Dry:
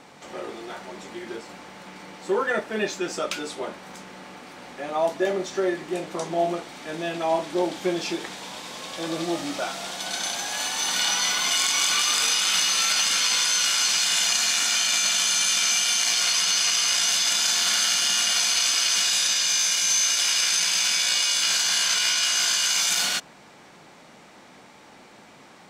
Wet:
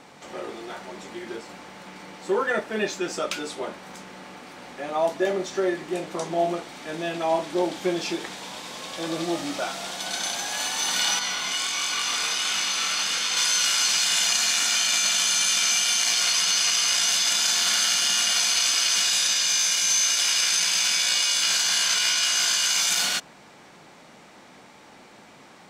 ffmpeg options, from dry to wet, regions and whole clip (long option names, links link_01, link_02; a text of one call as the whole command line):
ffmpeg -i in.wav -filter_complex "[0:a]asettb=1/sr,asplit=3[link_01][link_02][link_03];[link_01]atrim=end=11.194[link_04];[link_02]atrim=start=11.19:end=13.37,asetpts=PTS-STARTPTS,afade=type=in:duration=0.004:curve=qsin,afade=type=out:start_time=2.176:duration=0.004:curve=qsin,flanger=delay=19.5:depth=7.3:speed=1.4,highshelf=frequency=6600:gain=-6,aecho=1:1:854:0.562,atrim=end_sample=96138[link_05];[link_03]atrim=start=13.366[link_06];[link_04][link_05]acrossfade=duration=0.004:curve1=hsin:curve2=qsin[link_07];[link_07][link_06]acrossfade=duration=0.004:curve1=qsin:curve2=hsin" out.wav